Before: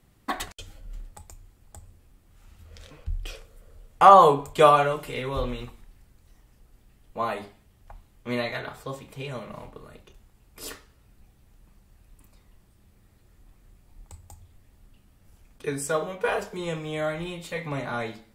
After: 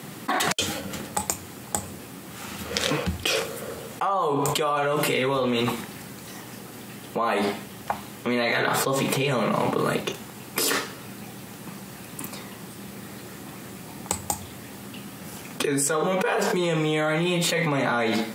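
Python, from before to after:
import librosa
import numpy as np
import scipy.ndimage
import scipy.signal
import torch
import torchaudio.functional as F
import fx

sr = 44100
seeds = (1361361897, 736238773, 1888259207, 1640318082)

y = scipy.signal.sosfilt(scipy.signal.butter(4, 150.0, 'highpass', fs=sr, output='sos'), x)
y = fx.notch(y, sr, hz=630.0, q=16.0)
y = fx.env_flatten(y, sr, amount_pct=100)
y = y * librosa.db_to_amplitude(-14.0)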